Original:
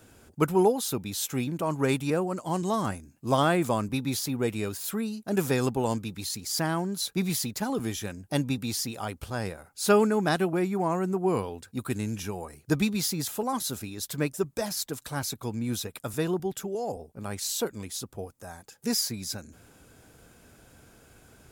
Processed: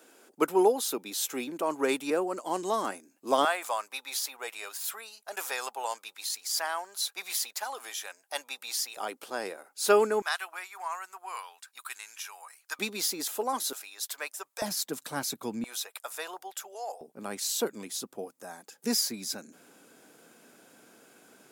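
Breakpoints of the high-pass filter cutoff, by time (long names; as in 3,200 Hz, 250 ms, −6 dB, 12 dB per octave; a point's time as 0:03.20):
high-pass filter 24 dB per octave
300 Hz
from 0:03.45 680 Hz
from 0:08.97 310 Hz
from 0:10.22 1,000 Hz
from 0:12.79 320 Hz
from 0:13.73 700 Hz
from 0:14.62 190 Hz
from 0:15.64 660 Hz
from 0:17.01 210 Hz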